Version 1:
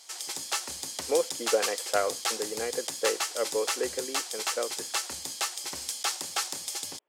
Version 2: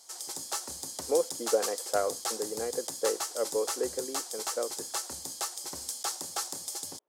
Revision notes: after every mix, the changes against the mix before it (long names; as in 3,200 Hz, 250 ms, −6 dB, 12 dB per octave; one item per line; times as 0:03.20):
master: add parametric band 2,500 Hz −13 dB 1.4 octaves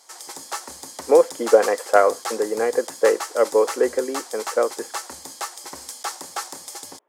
speech +7.5 dB
master: add graphic EQ with 10 bands 125 Hz −3 dB, 250 Hz +4 dB, 500 Hz +3 dB, 1,000 Hz +7 dB, 2,000 Hz +9 dB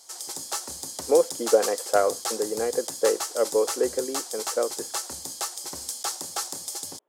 background +3.5 dB
master: add graphic EQ with 10 bands 125 Hz +3 dB, 250 Hz −4 dB, 500 Hz −3 dB, 1,000 Hz −7 dB, 2,000 Hz −9 dB